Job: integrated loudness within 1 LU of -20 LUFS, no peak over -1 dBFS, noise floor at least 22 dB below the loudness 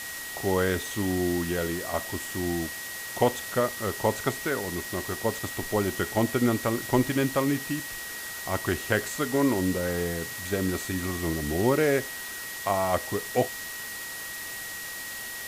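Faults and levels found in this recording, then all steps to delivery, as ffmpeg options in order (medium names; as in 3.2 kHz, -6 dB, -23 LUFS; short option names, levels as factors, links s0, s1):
steady tone 1.9 kHz; tone level -38 dBFS; noise floor -37 dBFS; noise floor target -50 dBFS; loudness -28.0 LUFS; peak level -8.0 dBFS; loudness target -20.0 LUFS
-> -af "bandreject=f=1900:w=30"
-af "afftdn=nr=13:nf=-37"
-af "volume=2.51,alimiter=limit=0.891:level=0:latency=1"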